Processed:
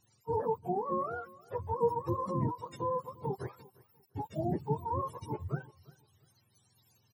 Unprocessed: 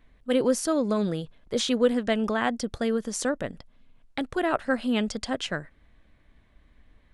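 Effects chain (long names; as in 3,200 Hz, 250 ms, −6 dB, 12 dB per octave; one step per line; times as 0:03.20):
frequency axis turned over on the octave scale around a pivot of 480 Hz
repeating echo 349 ms, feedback 26%, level −22 dB
level −6.5 dB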